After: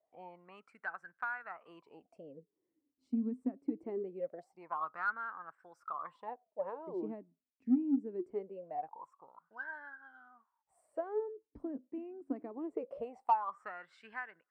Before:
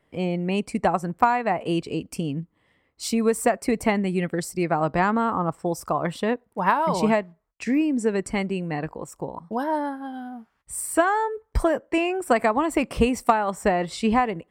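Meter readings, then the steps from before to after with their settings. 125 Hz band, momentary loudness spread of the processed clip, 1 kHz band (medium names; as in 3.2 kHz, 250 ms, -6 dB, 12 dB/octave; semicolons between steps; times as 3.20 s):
under -25 dB, 20 LU, -16.0 dB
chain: wah-wah 0.23 Hz 250–1600 Hz, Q 16; in parallel at -11 dB: saturation -28 dBFS, distortion -12 dB; on the sum: trim -1.5 dB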